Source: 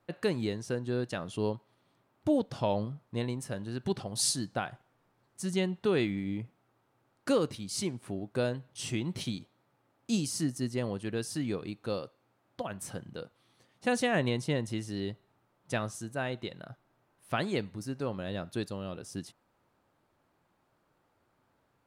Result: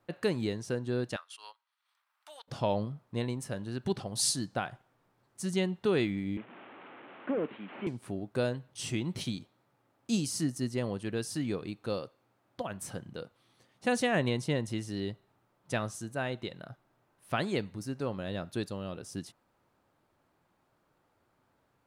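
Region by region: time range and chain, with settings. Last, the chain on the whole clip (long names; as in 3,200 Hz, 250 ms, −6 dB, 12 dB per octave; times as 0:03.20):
0:01.16–0:02.48: high-pass filter 1,100 Hz 24 dB per octave + notch filter 6,800 Hz + transient designer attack −2 dB, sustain −10 dB
0:06.37–0:07.87: linear delta modulator 16 kbit/s, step −43.5 dBFS + high-pass filter 210 Hz 24 dB per octave
whole clip: no processing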